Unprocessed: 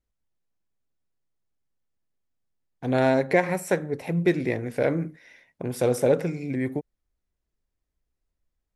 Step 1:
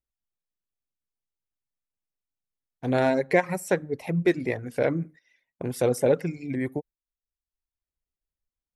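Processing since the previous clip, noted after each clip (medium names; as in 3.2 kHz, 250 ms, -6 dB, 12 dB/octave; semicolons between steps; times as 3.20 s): gate -43 dBFS, range -10 dB; reverb removal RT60 0.78 s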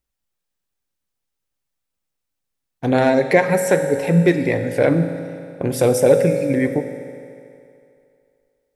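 in parallel at +1 dB: peak limiter -18.5 dBFS, peak gain reduction 11 dB; on the sum: reverberation RT60 2.6 s, pre-delay 3 ms, DRR 6 dB; trim +3 dB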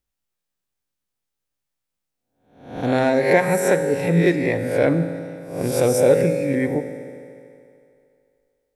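reverse spectral sustain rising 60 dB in 0.58 s; trim -3.5 dB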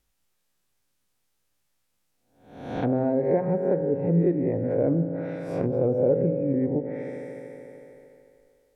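low-pass that closes with the level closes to 530 Hz, closed at -18.5 dBFS; compression 1.5:1, threshold -50 dBFS, peak gain reduction 13 dB; trim +8.5 dB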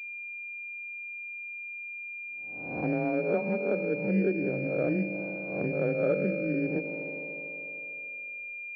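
frequency shift +24 Hz; class-D stage that switches slowly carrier 2.4 kHz; trim -5 dB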